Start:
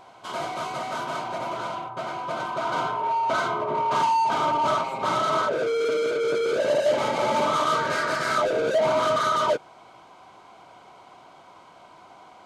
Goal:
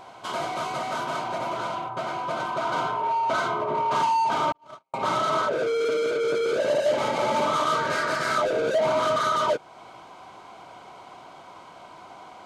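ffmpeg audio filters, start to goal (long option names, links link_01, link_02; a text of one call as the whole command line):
ffmpeg -i in.wav -filter_complex "[0:a]asettb=1/sr,asplit=3[link_01][link_02][link_03];[link_01]atrim=end=4.524[link_04];[link_02]atrim=start=4.52:end=4.94,asetpts=PTS-STARTPTS,afade=type=in:duration=0.004:curve=qsin,afade=type=out:start_time=0.416:duration=0.004:curve=qsin,agate=range=-56dB:threshold=-18dB:ratio=16:detection=peak[link_05];[link_03]atrim=start=4.936[link_06];[link_04][link_05]acrossfade=duration=0.004:curve1=hsin:curve2=qsin[link_07];[link_07][link_06]acrossfade=duration=0.004:curve1=qsin:curve2=hsin,asplit=2[link_08][link_09];[link_09]acompressor=threshold=-34dB:ratio=6,volume=2dB[link_10];[link_08][link_10]amix=inputs=2:normalize=0,volume=-3dB" out.wav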